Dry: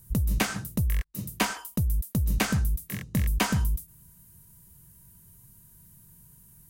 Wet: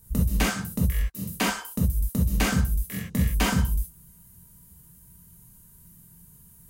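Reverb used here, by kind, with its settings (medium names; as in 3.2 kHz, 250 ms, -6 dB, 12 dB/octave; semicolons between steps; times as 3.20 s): gated-style reverb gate 90 ms flat, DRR -2.5 dB; trim -2.5 dB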